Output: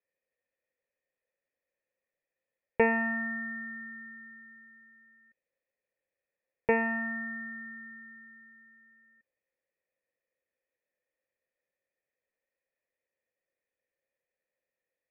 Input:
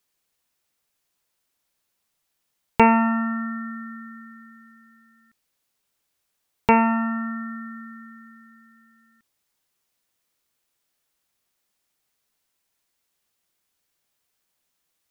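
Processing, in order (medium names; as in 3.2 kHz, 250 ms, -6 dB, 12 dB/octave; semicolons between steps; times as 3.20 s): cascade formant filter e; trim +5.5 dB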